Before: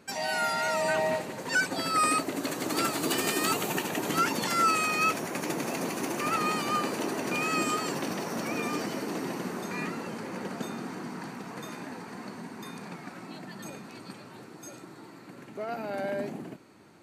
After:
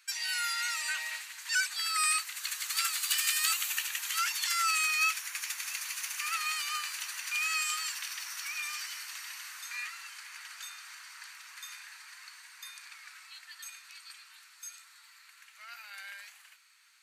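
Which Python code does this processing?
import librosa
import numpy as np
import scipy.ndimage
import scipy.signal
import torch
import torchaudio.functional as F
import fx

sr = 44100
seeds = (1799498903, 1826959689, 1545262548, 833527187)

y = scipy.signal.sosfilt(scipy.signal.bessel(6, 2300.0, 'highpass', norm='mag', fs=sr, output='sos'), x)
y = F.gain(torch.from_numpy(y), 3.5).numpy()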